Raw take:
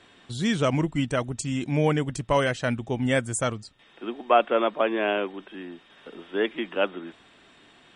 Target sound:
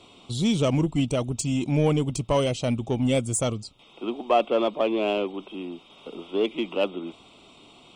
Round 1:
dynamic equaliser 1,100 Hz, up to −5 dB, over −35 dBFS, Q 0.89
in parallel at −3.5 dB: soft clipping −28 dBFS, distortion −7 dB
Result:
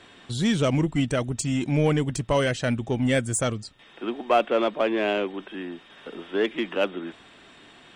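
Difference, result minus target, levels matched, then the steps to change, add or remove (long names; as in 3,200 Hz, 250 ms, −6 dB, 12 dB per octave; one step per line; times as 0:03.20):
2,000 Hz band +6.0 dB
add after dynamic equaliser: Butterworth band-reject 1,700 Hz, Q 1.6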